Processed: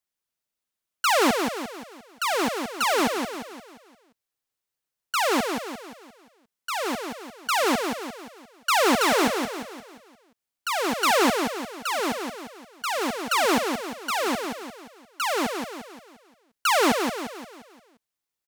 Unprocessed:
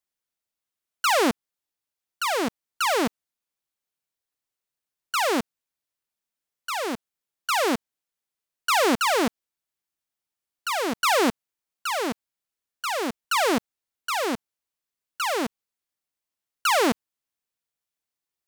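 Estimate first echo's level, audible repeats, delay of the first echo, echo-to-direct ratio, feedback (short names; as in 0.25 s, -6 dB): -5.5 dB, 5, 0.175 s, -4.5 dB, 46%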